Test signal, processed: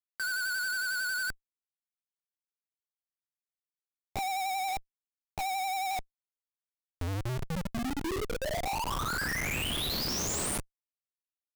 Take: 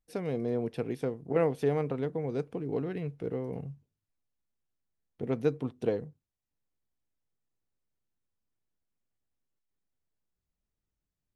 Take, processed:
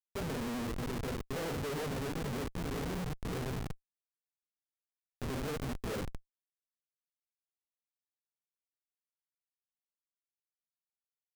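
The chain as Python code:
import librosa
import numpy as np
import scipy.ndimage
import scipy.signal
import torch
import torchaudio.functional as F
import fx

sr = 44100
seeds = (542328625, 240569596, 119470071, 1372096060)

y = fx.low_shelf(x, sr, hz=200.0, db=-4.5)
y = fx.rev_double_slope(y, sr, seeds[0], early_s=0.38, late_s=1.6, knee_db=-18, drr_db=-7.5)
y = fx.vibrato(y, sr, rate_hz=11.0, depth_cents=56.0)
y = fx.schmitt(y, sr, flips_db=-28.5)
y = F.gain(torch.from_numpy(y), -6.5).numpy()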